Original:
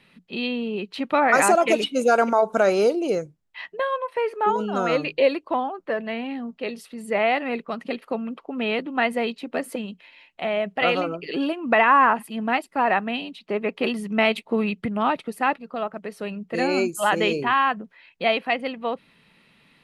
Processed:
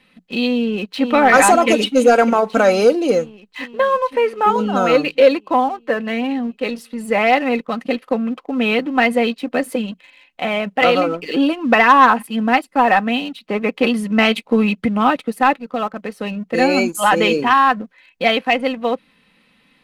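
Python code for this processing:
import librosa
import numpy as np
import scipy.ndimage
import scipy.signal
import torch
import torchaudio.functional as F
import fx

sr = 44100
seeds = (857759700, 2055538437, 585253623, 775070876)

y = fx.echo_throw(x, sr, start_s=0.48, length_s=0.57, ms=520, feedback_pct=75, wet_db=-6.5)
y = y + 0.51 * np.pad(y, (int(3.9 * sr / 1000.0), 0))[:len(y)]
y = fx.leveller(y, sr, passes=1)
y = y * 10.0 ** (2.5 / 20.0)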